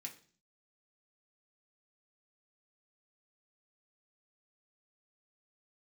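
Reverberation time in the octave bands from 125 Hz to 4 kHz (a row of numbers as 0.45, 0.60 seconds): 0.70, 0.65, 0.50, 0.40, 0.40, 0.50 seconds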